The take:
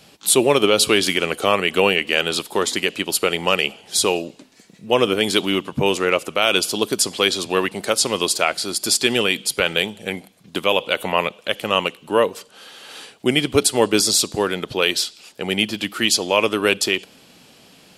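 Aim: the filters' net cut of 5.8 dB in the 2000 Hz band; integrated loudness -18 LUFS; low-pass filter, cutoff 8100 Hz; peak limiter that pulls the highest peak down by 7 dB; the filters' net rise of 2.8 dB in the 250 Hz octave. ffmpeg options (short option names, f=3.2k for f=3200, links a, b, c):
-af "lowpass=8.1k,equalizer=f=250:t=o:g=4,equalizer=f=2k:t=o:g=-8,volume=4dB,alimiter=limit=-5dB:level=0:latency=1"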